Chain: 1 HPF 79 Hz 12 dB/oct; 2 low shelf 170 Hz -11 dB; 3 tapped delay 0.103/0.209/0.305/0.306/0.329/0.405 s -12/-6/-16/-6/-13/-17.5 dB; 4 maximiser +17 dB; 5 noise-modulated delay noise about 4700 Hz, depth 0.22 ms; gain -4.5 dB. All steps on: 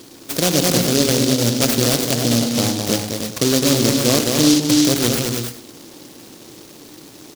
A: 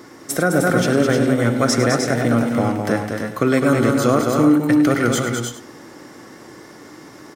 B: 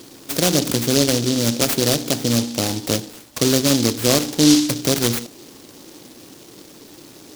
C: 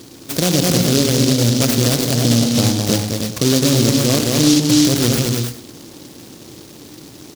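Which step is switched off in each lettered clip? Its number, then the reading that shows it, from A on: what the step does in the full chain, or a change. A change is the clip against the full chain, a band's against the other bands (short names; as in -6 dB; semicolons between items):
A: 5, 4 kHz band -12.5 dB; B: 3, momentary loudness spread change +2 LU; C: 2, 125 Hz band +5.5 dB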